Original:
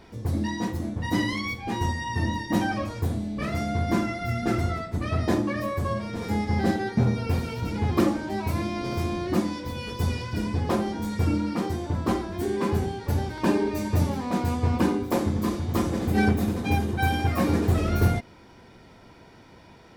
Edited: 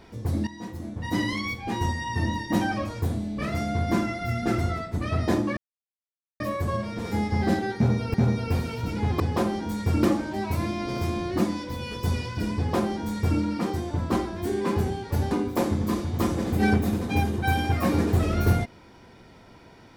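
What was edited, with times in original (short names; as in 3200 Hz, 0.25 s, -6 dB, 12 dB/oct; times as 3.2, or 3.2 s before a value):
0.47–1.33 fade in, from -13.5 dB
5.57 insert silence 0.83 s
6.93–7.31 loop, 2 plays
10.53–11.36 copy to 7.99
13.27–14.86 cut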